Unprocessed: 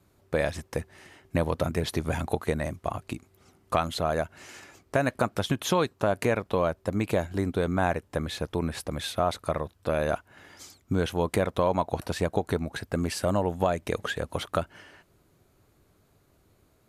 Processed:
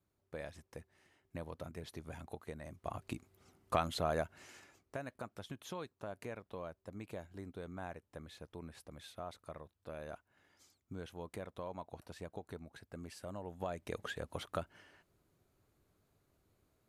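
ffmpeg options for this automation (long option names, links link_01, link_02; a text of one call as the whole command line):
ffmpeg -i in.wav -af "volume=1dB,afade=type=in:start_time=2.64:duration=0.48:silence=0.266073,afade=type=out:start_time=4.16:duration=0.88:silence=0.237137,afade=type=in:start_time=13.4:duration=0.63:silence=0.375837" out.wav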